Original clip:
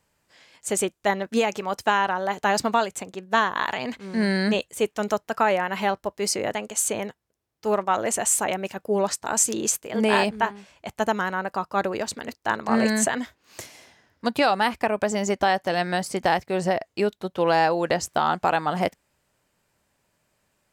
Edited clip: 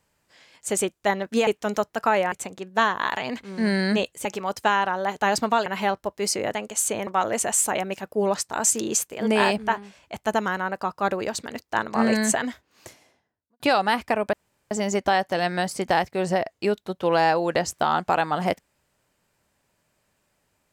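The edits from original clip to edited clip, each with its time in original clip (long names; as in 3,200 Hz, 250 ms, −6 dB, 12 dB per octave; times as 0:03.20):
0:01.47–0:02.88: swap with 0:04.81–0:05.66
0:07.07–0:07.80: remove
0:13.14–0:14.33: fade out and dull
0:15.06: splice in room tone 0.38 s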